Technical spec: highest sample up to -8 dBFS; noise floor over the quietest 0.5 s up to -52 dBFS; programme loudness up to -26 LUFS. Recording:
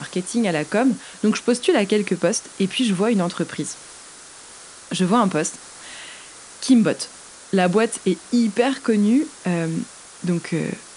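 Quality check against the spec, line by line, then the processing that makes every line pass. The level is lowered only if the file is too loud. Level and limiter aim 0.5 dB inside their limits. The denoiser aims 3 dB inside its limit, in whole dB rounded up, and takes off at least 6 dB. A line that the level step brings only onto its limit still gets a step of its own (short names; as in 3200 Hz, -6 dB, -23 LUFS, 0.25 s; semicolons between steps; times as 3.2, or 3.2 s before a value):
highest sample -5.5 dBFS: fail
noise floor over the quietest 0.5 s -42 dBFS: fail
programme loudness -21.0 LUFS: fail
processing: denoiser 8 dB, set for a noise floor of -42 dBFS; gain -5.5 dB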